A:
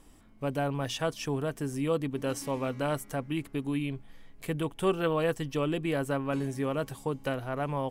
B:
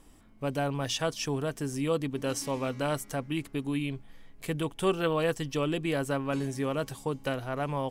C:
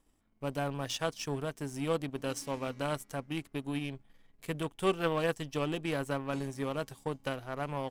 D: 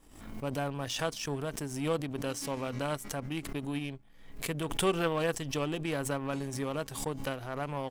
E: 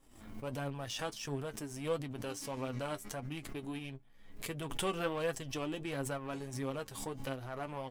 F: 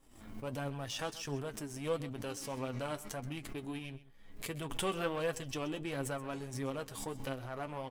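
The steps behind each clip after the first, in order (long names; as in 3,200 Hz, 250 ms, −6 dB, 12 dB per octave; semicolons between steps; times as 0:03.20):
dynamic equaliser 5,500 Hz, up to +6 dB, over −54 dBFS, Q 0.76
power curve on the samples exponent 1.4
background raised ahead of every attack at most 65 dB per second
flanger 1.5 Hz, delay 7.3 ms, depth 3 ms, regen +42%; level −1.5 dB
single-tap delay 129 ms −17 dB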